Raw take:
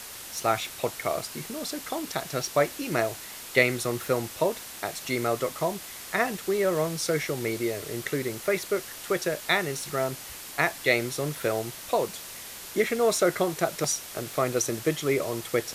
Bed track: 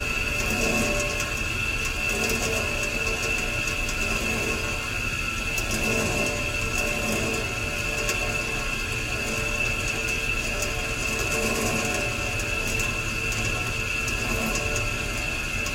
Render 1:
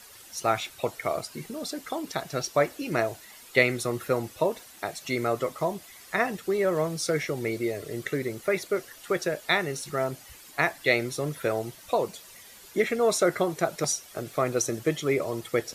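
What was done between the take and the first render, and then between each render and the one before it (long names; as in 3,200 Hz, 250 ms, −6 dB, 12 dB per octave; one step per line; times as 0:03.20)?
broadband denoise 11 dB, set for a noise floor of −41 dBFS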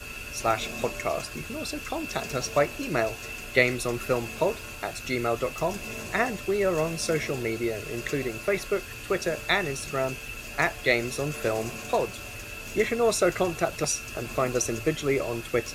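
mix in bed track −12.5 dB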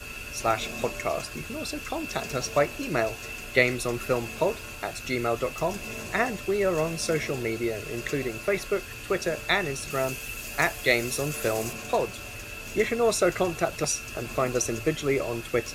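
0:09.90–0:11.73: high-shelf EQ 6,500 Hz +9.5 dB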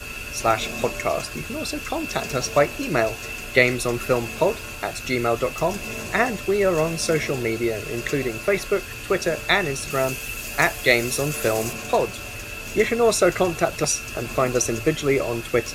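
level +5 dB
brickwall limiter −1 dBFS, peak gain reduction 1 dB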